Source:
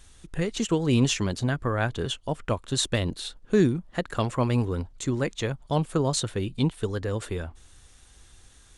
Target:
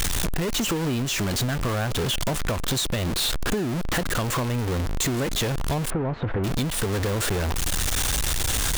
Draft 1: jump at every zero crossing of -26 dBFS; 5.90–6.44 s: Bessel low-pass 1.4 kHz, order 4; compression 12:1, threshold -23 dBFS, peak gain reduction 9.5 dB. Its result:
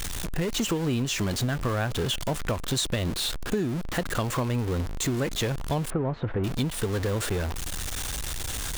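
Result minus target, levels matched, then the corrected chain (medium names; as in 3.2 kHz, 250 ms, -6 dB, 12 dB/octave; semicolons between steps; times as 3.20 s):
jump at every zero crossing: distortion -6 dB
jump at every zero crossing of -16 dBFS; 5.90–6.44 s: Bessel low-pass 1.4 kHz, order 4; compression 12:1, threshold -23 dBFS, peak gain reduction 11 dB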